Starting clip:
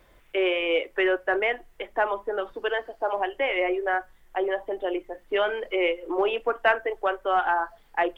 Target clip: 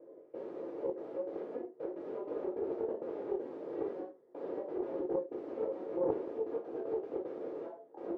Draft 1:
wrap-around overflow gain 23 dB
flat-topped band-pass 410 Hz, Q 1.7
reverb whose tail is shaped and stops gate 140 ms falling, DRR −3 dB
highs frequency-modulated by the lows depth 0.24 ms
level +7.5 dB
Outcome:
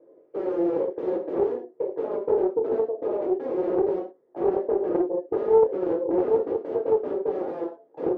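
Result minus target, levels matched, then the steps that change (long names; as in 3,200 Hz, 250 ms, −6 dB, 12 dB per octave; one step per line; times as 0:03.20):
wrap-around overflow: distortion −19 dB
change: wrap-around overflow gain 33 dB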